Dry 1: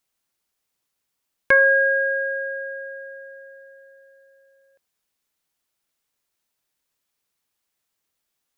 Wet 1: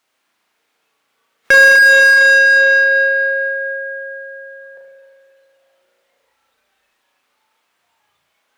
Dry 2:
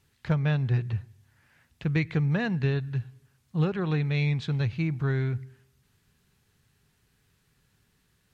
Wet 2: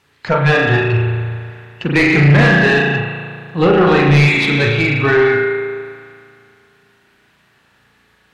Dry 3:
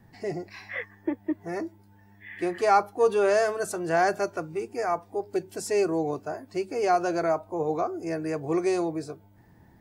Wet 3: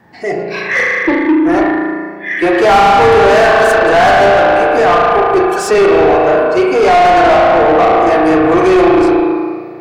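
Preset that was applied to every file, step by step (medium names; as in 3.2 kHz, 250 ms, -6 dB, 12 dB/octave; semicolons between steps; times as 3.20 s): spring tank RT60 2.4 s, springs 35 ms, chirp 25 ms, DRR -2.5 dB; spectral noise reduction 9 dB; overdrive pedal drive 31 dB, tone 1.9 kHz, clips at -2 dBFS; trim +2 dB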